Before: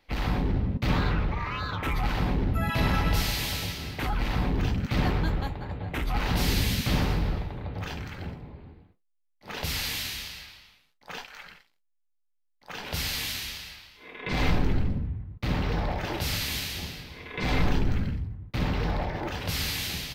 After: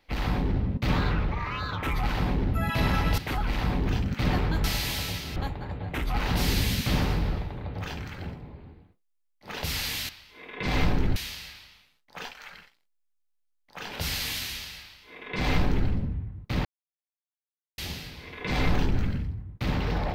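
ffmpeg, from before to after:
-filter_complex "[0:a]asplit=8[s0][s1][s2][s3][s4][s5][s6][s7];[s0]atrim=end=3.182[s8];[s1]atrim=start=3.898:end=5.362[s9];[s2]atrim=start=3.178:end=3.902[s10];[s3]atrim=start=5.358:end=10.092[s11];[s4]atrim=start=13.748:end=14.822[s12];[s5]atrim=start=10.088:end=15.58,asetpts=PTS-STARTPTS,afade=t=out:st=5.488:d=0.004:c=hsin[s13];[s6]atrim=start=15.58:end=16.71,asetpts=PTS-STARTPTS,volume=0[s14];[s7]atrim=start=16.71,asetpts=PTS-STARTPTS,afade=t=in:d=0.004:c=hsin[s15];[s8][s9]acrossfade=d=0.004:c1=hsin:c2=hsin[s16];[s16][s10]acrossfade=d=0.004:c1=hsin:c2=hsin[s17];[s17][s11]acrossfade=d=0.004:c1=hsin:c2=hsin[s18];[s18][s12]acrossfade=d=0.004:c1=hsin:c2=hsin[s19];[s13][s14][s15]concat=n=3:v=0:a=1[s20];[s19][s20]acrossfade=d=0.004:c1=hsin:c2=hsin"

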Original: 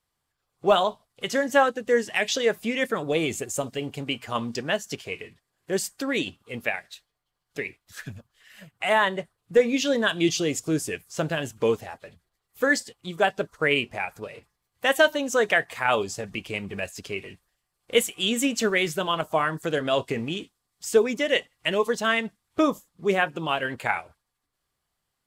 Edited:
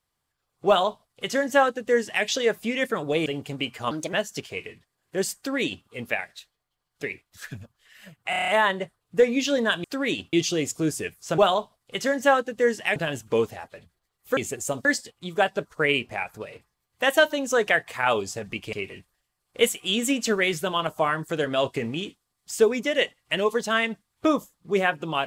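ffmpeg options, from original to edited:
-filter_complex "[0:a]asplit=17[s0][s1][s2][s3][s4][s5][s6][s7][s8][s9][s10][s11][s12][s13][s14][s15][s16];[s0]atrim=end=3.262[s17];[s1]atrim=start=3.738:end=4.394[s18];[s2]atrim=start=4.39:end=4.68,asetpts=PTS-STARTPTS,asetrate=58212,aresample=44100[s19];[s3]atrim=start=4.676:end=8.882[s20];[s4]atrim=start=8.848:end=8.882[s21];[s5]atrim=start=8.848:end=8.882[s22];[s6]atrim=start=8.848:end=8.882[s23];[s7]atrim=start=8.848:end=8.882[s24];[s8]atrim=start=8.848:end=8.882[s25];[s9]atrim=start=8.848:end=10.212[s26];[s10]atrim=start=5.918:end=6.412[s27];[s11]atrim=start=10.208:end=11.262[s28];[s12]atrim=start=0.668:end=2.252[s29];[s13]atrim=start=11.258:end=12.672[s30];[s14]atrim=start=3.258:end=3.742[s31];[s15]atrim=start=12.668:end=16.552[s32];[s16]atrim=start=17.068[s33];[s17][s18]acrossfade=d=0.004:c1=hsin:c2=hsin[s34];[s34][s19]acrossfade=d=0.004:c1=hsin:c2=hsin[s35];[s35][s20]acrossfade=d=0.004:c1=hsin:c2=hsin[s36];[s36][s21]acrossfade=d=0.004:c1=hsin:c2=hsin[s37];[s37][s22]acrossfade=d=0.004:c1=hsin:c2=hsin[s38];[s38][s23]acrossfade=d=0.004:c1=hsin:c2=hsin[s39];[s39][s24]acrossfade=d=0.004:c1=hsin:c2=hsin[s40];[s40][s25]acrossfade=d=0.004:c1=hsin:c2=hsin[s41];[s41][s26]acrossfade=d=0.004:c1=hsin:c2=hsin[s42];[s42][s27]acrossfade=d=0.004:c1=hsin:c2=hsin[s43];[s43][s28]acrossfade=d=0.004:c1=hsin:c2=hsin[s44];[s44][s29]acrossfade=d=0.004:c1=hsin:c2=hsin[s45];[s45][s30]acrossfade=d=0.004:c1=hsin:c2=hsin[s46];[s46][s31]acrossfade=d=0.004:c1=hsin:c2=hsin[s47];[s47][s32]acrossfade=d=0.004:c1=hsin:c2=hsin[s48];[s48][s33]acrossfade=d=0.004:c1=hsin:c2=hsin"

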